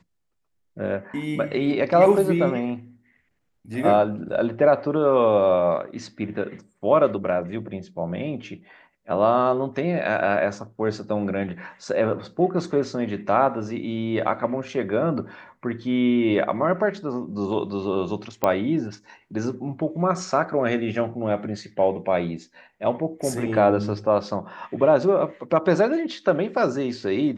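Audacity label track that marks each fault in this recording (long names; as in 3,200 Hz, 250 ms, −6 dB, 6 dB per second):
18.440000	18.440000	click −8 dBFS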